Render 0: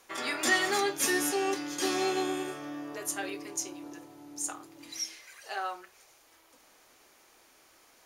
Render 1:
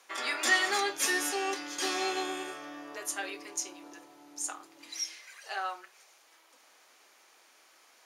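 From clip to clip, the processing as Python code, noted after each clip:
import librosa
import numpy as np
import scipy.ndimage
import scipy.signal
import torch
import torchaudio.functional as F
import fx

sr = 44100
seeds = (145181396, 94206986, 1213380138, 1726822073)

y = fx.weighting(x, sr, curve='A')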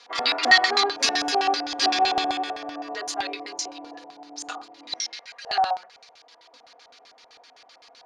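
y = x + 0.86 * np.pad(x, (int(4.2 * sr / 1000.0), 0))[:len(x)]
y = fx.filter_lfo_lowpass(y, sr, shape='square', hz=7.8, low_hz=730.0, high_hz=4400.0, q=3.7)
y = F.gain(torch.from_numpy(y), 4.0).numpy()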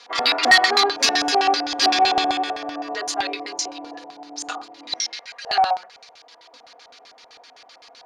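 y = 10.0 ** (-9.0 / 20.0) * np.tanh(x / 10.0 ** (-9.0 / 20.0))
y = F.gain(torch.from_numpy(y), 4.5).numpy()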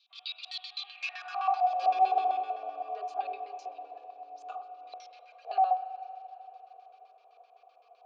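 y = fx.vowel_filter(x, sr, vowel='a')
y = fx.rev_spring(y, sr, rt60_s=3.7, pass_ms=(38, 44), chirp_ms=75, drr_db=11.0)
y = fx.filter_sweep_highpass(y, sr, from_hz=3800.0, to_hz=420.0, start_s=0.77, end_s=1.96, q=4.2)
y = F.gain(torch.from_numpy(y), -8.0).numpy()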